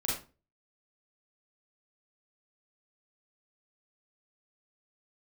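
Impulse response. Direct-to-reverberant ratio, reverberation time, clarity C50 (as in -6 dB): -5.5 dB, 0.35 s, 2.5 dB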